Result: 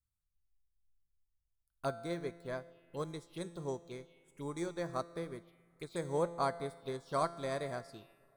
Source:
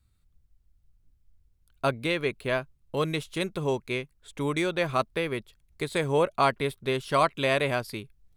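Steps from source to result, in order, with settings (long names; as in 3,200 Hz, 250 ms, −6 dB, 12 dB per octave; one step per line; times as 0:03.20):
high-shelf EQ 6,100 Hz +8 dB
tuned comb filter 170 Hz, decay 1.6 s, mix 80%
phaser swept by the level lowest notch 410 Hz, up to 2,800 Hz, full sweep at −40 dBFS
on a send at −18 dB: convolution reverb RT60 4.7 s, pre-delay 65 ms
on the sum: expander for the loud parts 1.5 to 1, over −59 dBFS
level +4.5 dB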